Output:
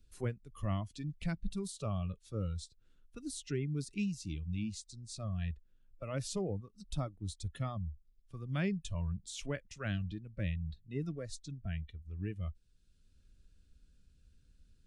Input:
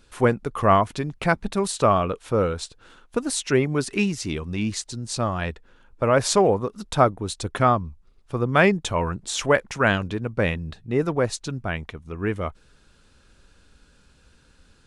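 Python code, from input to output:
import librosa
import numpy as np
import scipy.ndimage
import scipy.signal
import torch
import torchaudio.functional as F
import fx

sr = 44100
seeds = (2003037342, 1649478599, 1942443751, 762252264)

y = fx.noise_reduce_blind(x, sr, reduce_db=14)
y = fx.tone_stack(y, sr, knobs='10-0-1')
y = fx.band_squash(y, sr, depth_pct=40)
y = y * 10.0 ** (5.5 / 20.0)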